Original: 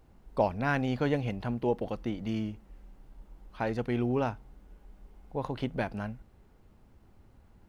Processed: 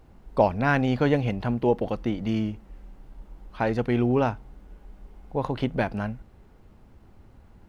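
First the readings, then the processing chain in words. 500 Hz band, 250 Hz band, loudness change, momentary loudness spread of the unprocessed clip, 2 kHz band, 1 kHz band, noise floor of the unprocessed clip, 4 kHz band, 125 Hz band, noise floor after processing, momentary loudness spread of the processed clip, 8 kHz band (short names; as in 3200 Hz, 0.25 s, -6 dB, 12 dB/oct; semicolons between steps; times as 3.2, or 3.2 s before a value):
+6.5 dB, +6.5 dB, +6.5 dB, 10 LU, +6.0 dB, +6.5 dB, -60 dBFS, +5.5 dB, +6.5 dB, -53 dBFS, 10 LU, n/a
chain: high shelf 5800 Hz -5 dB; gain +6.5 dB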